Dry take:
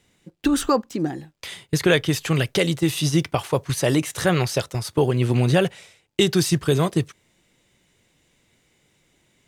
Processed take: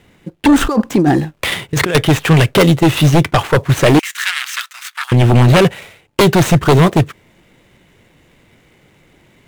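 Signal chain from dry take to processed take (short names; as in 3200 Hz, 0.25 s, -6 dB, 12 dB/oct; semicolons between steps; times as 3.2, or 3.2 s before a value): median filter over 9 samples; 0.61–1.95 negative-ratio compressor -27 dBFS, ratio -1; sine folder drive 9 dB, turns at -6.5 dBFS; 3.99–5.12 inverse Chebyshev high-pass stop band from 430 Hz, stop band 60 dB; gain +2 dB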